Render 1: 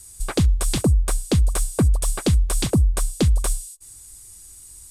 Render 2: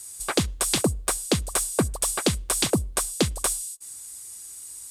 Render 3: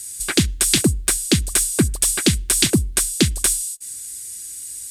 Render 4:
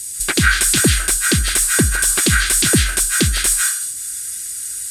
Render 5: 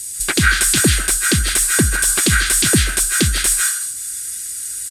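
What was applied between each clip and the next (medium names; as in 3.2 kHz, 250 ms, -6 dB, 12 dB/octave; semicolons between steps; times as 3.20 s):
high-pass 480 Hz 6 dB/octave; trim +3.5 dB
high-order bell 750 Hz -13 dB; trim +7.5 dB
peak limiter -10 dBFS, peak gain reduction 7.5 dB; on a send at -1.5 dB: resonant high-pass 1.5 kHz, resonance Q 6.6 + reverberation RT60 0.55 s, pre-delay 115 ms; on the sum: trim +4.5 dB
speakerphone echo 140 ms, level -16 dB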